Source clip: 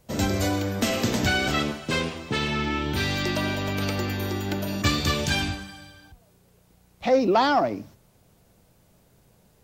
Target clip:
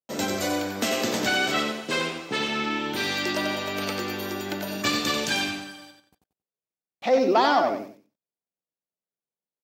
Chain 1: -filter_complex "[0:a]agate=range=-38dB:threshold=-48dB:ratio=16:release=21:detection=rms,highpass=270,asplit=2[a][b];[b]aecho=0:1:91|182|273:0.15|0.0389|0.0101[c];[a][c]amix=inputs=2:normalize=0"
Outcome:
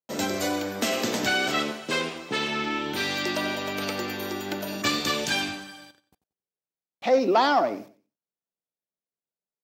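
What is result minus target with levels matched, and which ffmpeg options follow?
echo-to-direct -10 dB
-filter_complex "[0:a]agate=range=-38dB:threshold=-48dB:ratio=16:release=21:detection=rms,highpass=270,asplit=2[a][b];[b]aecho=0:1:91|182|273:0.473|0.123|0.032[c];[a][c]amix=inputs=2:normalize=0"

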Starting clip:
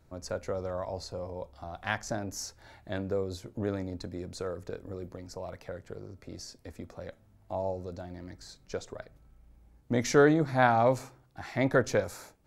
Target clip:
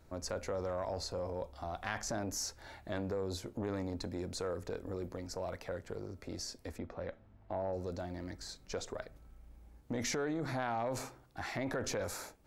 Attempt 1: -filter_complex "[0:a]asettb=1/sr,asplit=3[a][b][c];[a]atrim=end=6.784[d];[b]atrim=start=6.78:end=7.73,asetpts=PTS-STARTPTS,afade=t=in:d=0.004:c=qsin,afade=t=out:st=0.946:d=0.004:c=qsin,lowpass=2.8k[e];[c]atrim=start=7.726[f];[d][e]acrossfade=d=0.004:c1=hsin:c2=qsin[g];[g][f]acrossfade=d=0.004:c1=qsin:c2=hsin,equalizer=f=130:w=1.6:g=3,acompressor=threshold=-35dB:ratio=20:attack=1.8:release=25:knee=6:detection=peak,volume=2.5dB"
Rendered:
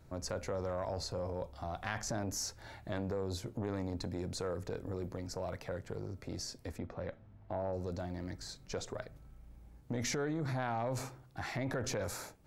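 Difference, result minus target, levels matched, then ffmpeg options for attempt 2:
125 Hz band +3.5 dB
-filter_complex "[0:a]asettb=1/sr,asplit=3[a][b][c];[a]atrim=end=6.784[d];[b]atrim=start=6.78:end=7.73,asetpts=PTS-STARTPTS,afade=t=in:d=0.004:c=qsin,afade=t=out:st=0.946:d=0.004:c=qsin,lowpass=2.8k[e];[c]atrim=start=7.726[f];[d][e]acrossfade=d=0.004:c1=hsin:c2=qsin[g];[g][f]acrossfade=d=0.004:c1=qsin:c2=hsin,equalizer=f=130:w=1.6:g=-5.5,acompressor=threshold=-35dB:ratio=20:attack=1.8:release=25:knee=6:detection=peak,volume=2.5dB"

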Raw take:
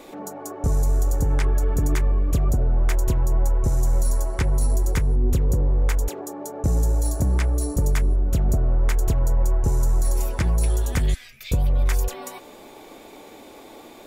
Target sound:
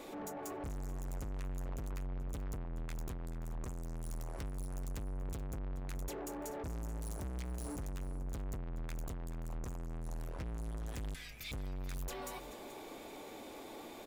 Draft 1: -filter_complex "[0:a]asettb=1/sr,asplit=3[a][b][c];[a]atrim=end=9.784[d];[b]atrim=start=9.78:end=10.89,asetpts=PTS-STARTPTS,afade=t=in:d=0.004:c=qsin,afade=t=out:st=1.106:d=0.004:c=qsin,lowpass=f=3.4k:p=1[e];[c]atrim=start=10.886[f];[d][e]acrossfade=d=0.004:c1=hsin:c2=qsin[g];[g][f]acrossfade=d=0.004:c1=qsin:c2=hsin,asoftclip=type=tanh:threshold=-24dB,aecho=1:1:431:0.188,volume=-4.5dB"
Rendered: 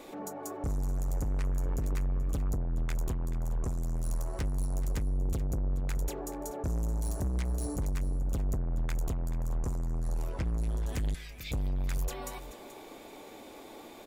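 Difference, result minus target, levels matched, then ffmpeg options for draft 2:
soft clip: distortion -5 dB
-filter_complex "[0:a]asettb=1/sr,asplit=3[a][b][c];[a]atrim=end=9.784[d];[b]atrim=start=9.78:end=10.89,asetpts=PTS-STARTPTS,afade=t=in:d=0.004:c=qsin,afade=t=out:st=1.106:d=0.004:c=qsin,lowpass=f=3.4k:p=1[e];[c]atrim=start=10.886[f];[d][e]acrossfade=d=0.004:c1=hsin:c2=qsin[g];[g][f]acrossfade=d=0.004:c1=qsin:c2=hsin,asoftclip=type=tanh:threshold=-35dB,aecho=1:1:431:0.188,volume=-4.5dB"

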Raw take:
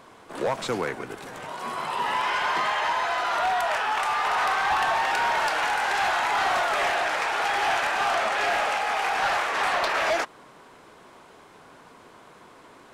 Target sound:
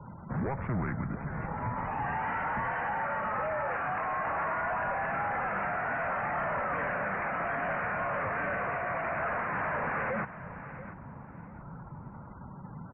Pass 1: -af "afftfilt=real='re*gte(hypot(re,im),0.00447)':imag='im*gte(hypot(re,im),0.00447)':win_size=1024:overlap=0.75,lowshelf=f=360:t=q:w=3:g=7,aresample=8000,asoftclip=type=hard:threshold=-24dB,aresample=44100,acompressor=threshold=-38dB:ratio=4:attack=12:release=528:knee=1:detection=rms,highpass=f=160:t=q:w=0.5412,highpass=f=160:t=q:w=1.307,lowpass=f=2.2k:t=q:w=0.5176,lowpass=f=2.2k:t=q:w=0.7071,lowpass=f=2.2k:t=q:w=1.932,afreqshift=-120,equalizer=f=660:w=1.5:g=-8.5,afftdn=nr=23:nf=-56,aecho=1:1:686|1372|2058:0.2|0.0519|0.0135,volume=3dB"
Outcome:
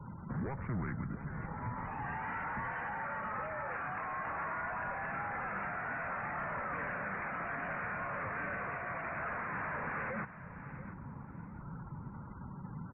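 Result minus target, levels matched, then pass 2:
compressor: peak gain reduction +4.5 dB; 500 Hz band -2.5 dB
-af "afftfilt=real='re*gte(hypot(re,im),0.00447)':imag='im*gte(hypot(re,im),0.00447)':win_size=1024:overlap=0.75,lowshelf=f=360:t=q:w=3:g=7,aresample=8000,asoftclip=type=hard:threshold=-24dB,aresample=44100,acompressor=threshold=-32dB:ratio=4:attack=12:release=528:knee=1:detection=rms,highpass=f=160:t=q:w=0.5412,highpass=f=160:t=q:w=1.307,lowpass=f=2.2k:t=q:w=0.5176,lowpass=f=2.2k:t=q:w=0.7071,lowpass=f=2.2k:t=q:w=1.932,afreqshift=-120,equalizer=f=660:w=1.5:g=-2.5,afftdn=nr=23:nf=-56,aecho=1:1:686|1372|2058:0.2|0.0519|0.0135,volume=3dB"

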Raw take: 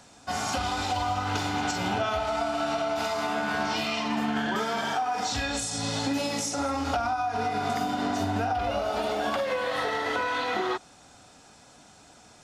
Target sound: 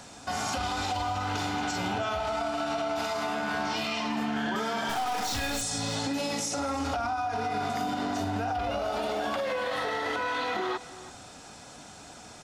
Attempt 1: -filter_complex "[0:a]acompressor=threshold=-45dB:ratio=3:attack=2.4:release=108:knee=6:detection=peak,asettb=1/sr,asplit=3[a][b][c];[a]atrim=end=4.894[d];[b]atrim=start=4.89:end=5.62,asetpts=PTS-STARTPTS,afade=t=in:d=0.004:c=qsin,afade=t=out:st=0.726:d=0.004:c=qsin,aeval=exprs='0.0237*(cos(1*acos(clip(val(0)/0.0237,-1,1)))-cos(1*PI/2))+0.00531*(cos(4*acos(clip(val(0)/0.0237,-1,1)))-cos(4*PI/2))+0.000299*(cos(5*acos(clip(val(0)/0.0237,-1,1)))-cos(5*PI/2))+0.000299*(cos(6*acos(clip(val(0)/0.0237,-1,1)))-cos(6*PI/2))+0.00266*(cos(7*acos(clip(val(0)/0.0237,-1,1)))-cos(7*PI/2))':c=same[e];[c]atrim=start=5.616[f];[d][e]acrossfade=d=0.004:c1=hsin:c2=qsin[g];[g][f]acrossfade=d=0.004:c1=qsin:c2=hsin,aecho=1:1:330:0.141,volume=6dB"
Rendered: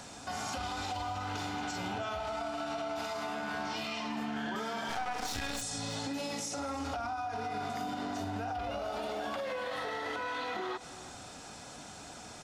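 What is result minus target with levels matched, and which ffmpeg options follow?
compressor: peak gain reduction +6.5 dB
-filter_complex "[0:a]acompressor=threshold=-35.5dB:ratio=3:attack=2.4:release=108:knee=6:detection=peak,asettb=1/sr,asplit=3[a][b][c];[a]atrim=end=4.894[d];[b]atrim=start=4.89:end=5.62,asetpts=PTS-STARTPTS,afade=t=in:d=0.004:c=qsin,afade=t=out:st=0.726:d=0.004:c=qsin,aeval=exprs='0.0237*(cos(1*acos(clip(val(0)/0.0237,-1,1)))-cos(1*PI/2))+0.00531*(cos(4*acos(clip(val(0)/0.0237,-1,1)))-cos(4*PI/2))+0.000299*(cos(5*acos(clip(val(0)/0.0237,-1,1)))-cos(5*PI/2))+0.000299*(cos(6*acos(clip(val(0)/0.0237,-1,1)))-cos(6*PI/2))+0.00266*(cos(7*acos(clip(val(0)/0.0237,-1,1)))-cos(7*PI/2))':c=same[e];[c]atrim=start=5.616[f];[d][e]acrossfade=d=0.004:c1=hsin:c2=qsin[g];[g][f]acrossfade=d=0.004:c1=qsin:c2=hsin,aecho=1:1:330:0.141,volume=6dB"

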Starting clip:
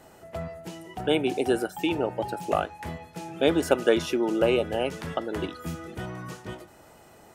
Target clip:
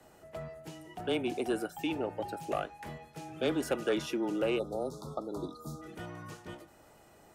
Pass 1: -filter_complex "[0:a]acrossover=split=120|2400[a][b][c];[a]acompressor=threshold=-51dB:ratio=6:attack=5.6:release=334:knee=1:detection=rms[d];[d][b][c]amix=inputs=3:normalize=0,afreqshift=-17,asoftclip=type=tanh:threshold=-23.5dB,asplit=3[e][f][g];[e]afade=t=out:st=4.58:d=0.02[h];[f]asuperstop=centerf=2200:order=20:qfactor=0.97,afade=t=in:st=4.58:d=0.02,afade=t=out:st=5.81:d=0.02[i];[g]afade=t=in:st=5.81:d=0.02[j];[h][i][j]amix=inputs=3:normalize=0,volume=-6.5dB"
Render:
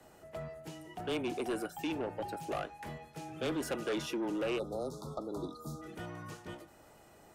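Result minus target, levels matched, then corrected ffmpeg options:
soft clip: distortion +8 dB
-filter_complex "[0:a]acrossover=split=120|2400[a][b][c];[a]acompressor=threshold=-51dB:ratio=6:attack=5.6:release=334:knee=1:detection=rms[d];[d][b][c]amix=inputs=3:normalize=0,afreqshift=-17,asoftclip=type=tanh:threshold=-15dB,asplit=3[e][f][g];[e]afade=t=out:st=4.58:d=0.02[h];[f]asuperstop=centerf=2200:order=20:qfactor=0.97,afade=t=in:st=4.58:d=0.02,afade=t=out:st=5.81:d=0.02[i];[g]afade=t=in:st=5.81:d=0.02[j];[h][i][j]amix=inputs=3:normalize=0,volume=-6.5dB"

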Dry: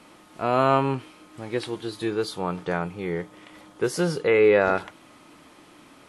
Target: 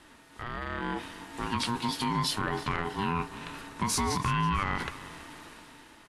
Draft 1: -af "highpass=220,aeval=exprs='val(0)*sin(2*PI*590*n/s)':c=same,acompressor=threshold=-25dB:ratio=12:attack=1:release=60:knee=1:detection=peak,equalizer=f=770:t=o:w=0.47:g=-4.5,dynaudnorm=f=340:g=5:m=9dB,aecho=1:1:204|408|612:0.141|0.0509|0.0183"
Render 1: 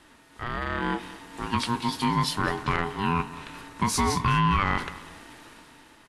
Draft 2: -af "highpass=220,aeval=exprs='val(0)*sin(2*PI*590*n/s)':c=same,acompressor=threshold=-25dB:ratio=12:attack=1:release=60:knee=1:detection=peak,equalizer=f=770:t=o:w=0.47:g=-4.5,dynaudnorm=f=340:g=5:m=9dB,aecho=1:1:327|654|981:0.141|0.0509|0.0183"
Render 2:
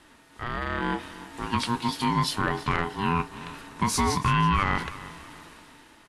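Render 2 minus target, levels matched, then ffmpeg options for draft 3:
compressor: peak gain reduction -5.5 dB
-af "highpass=220,aeval=exprs='val(0)*sin(2*PI*590*n/s)':c=same,acompressor=threshold=-31dB:ratio=12:attack=1:release=60:knee=1:detection=peak,equalizer=f=770:t=o:w=0.47:g=-4.5,dynaudnorm=f=340:g=5:m=9dB,aecho=1:1:327|654|981:0.141|0.0509|0.0183"

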